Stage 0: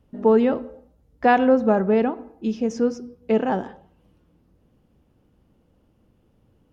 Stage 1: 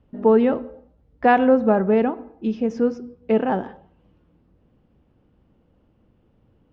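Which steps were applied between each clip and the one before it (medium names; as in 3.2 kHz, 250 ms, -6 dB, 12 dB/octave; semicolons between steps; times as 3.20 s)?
low-pass 3.4 kHz 12 dB/octave; trim +1 dB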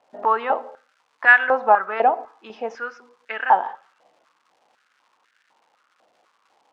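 crackle 360 per s -52 dBFS; distance through air 80 m; step-sequenced high-pass 4 Hz 710–1600 Hz; trim +2.5 dB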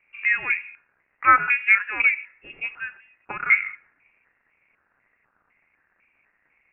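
frequency inversion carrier 3 kHz; trim -2.5 dB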